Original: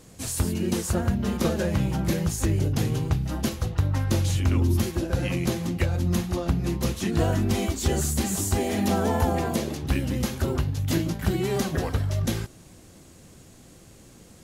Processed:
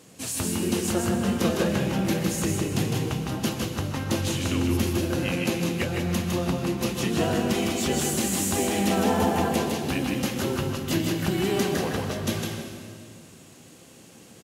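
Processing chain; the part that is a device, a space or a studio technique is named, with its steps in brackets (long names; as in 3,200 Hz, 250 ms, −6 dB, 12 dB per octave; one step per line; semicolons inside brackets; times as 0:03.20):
PA in a hall (high-pass filter 150 Hz 12 dB per octave; parametric band 2,800 Hz +4.5 dB 0.42 octaves; single-tap delay 157 ms −4 dB; convolution reverb RT60 2.1 s, pre-delay 113 ms, DRR 6.5 dB)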